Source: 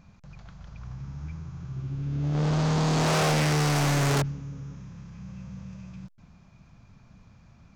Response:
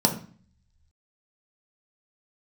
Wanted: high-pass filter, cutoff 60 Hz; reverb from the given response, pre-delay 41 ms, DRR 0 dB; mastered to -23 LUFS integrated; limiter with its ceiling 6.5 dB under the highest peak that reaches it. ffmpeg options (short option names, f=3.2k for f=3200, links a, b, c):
-filter_complex "[0:a]highpass=60,alimiter=limit=-21dB:level=0:latency=1,asplit=2[a][b];[1:a]atrim=start_sample=2205,adelay=41[c];[b][c]afir=irnorm=-1:irlink=0,volume=-13.5dB[d];[a][d]amix=inputs=2:normalize=0,volume=-0.5dB"